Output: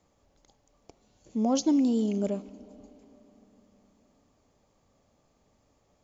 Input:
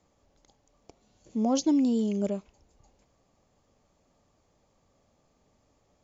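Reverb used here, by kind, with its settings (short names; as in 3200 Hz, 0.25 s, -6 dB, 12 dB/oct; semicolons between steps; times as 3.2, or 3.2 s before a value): digital reverb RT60 4.2 s, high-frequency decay 0.75×, pre-delay 0 ms, DRR 18 dB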